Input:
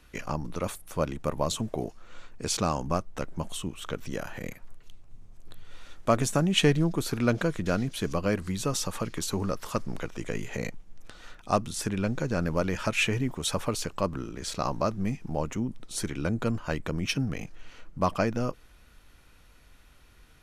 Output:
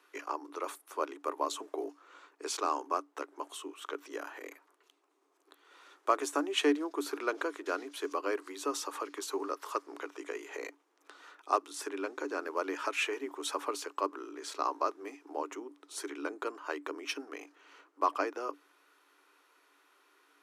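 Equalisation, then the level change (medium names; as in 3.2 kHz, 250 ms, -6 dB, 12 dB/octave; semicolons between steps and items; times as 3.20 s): rippled Chebyshev high-pass 280 Hz, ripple 9 dB; +1.0 dB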